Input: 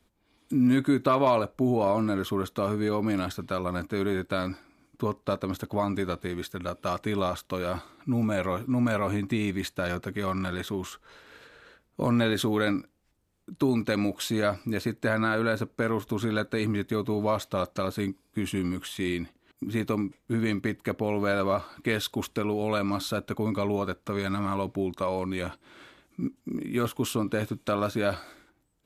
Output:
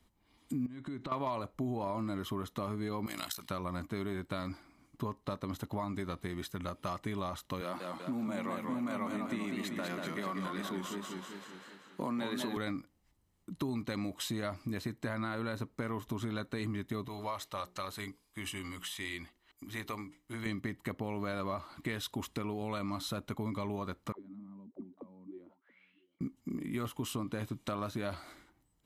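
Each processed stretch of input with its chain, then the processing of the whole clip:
0.66–1.12 s: compression 8:1, threshold -34 dBFS + distance through air 78 m
3.06–3.50 s: tilt EQ +4.5 dB/octave + AM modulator 59 Hz, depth 70%
7.61–12.57 s: high-pass 180 Hz 24 dB/octave + modulated delay 193 ms, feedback 57%, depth 131 cents, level -5 dB
17.08–20.46 s: peaking EQ 180 Hz -14.5 dB 2.8 oct + hum notches 60/120/180/240/300/360/420/480 Hz
24.12–26.21 s: bass shelf 280 Hz -7.5 dB + auto-wah 220–3400 Hz, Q 12, down, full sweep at -28 dBFS + delay 678 ms -23 dB
whole clip: comb 1 ms, depth 34%; compression 3:1, threshold -33 dBFS; trim -2.5 dB

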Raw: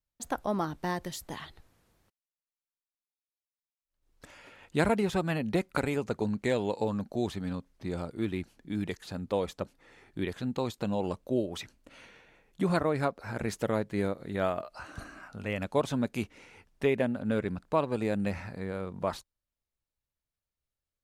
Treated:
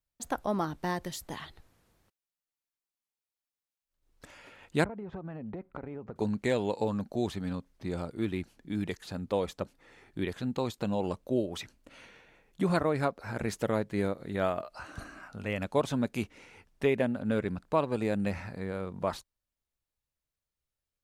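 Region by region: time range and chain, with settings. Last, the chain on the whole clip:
4.84–6.16 s: low-pass 1.2 kHz + compression 12:1, threshold -36 dBFS
whole clip: none

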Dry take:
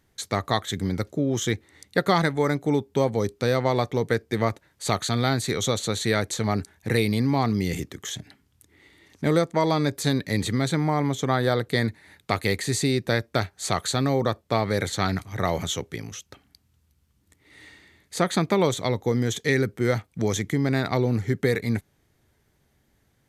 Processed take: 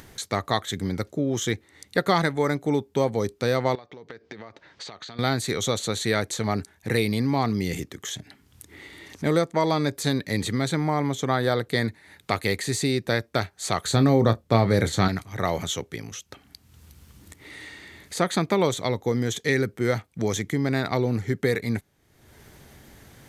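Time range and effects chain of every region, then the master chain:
3.75–5.19 s: low-pass 5.2 kHz 24 dB/octave + bass shelf 150 Hz -12 dB + compression 20:1, threshold -38 dBFS
13.85–15.08 s: bass shelf 350 Hz +9.5 dB + doubling 26 ms -12 dB
whole clip: de-esser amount 45%; bass shelf 180 Hz -3 dB; upward compressor, threshold -33 dBFS

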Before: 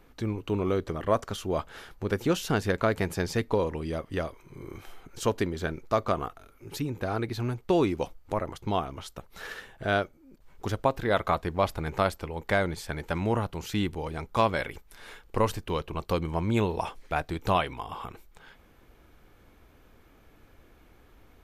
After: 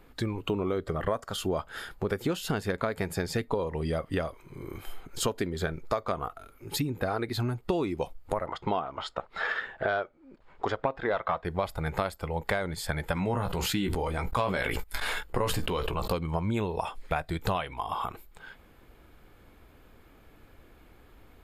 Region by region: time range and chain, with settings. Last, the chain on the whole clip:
8.46–11.45 s: low-pass 6.3 kHz + overdrive pedal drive 13 dB, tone 1.4 kHz, clips at -9 dBFS
13.14–16.13 s: gate -47 dBFS, range -39 dB + doubling 16 ms -7 dB + decay stretcher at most 24 dB/s
whole clip: band-stop 5.9 kHz, Q 5.8; spectral noise reduction 7 dB; compression 6:1, threshold -35 dBFS; trim +8.5 dB

